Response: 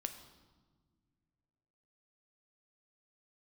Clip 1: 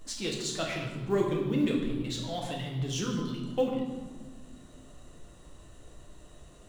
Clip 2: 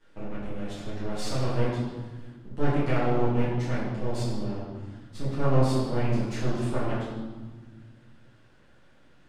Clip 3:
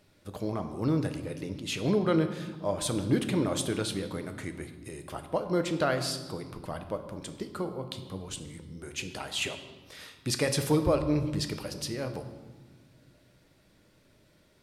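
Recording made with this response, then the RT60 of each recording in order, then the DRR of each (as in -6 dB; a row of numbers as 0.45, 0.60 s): 3; 1.5 s, 1.5 s, not exponential; -1.5, -11.5, 7.0 dB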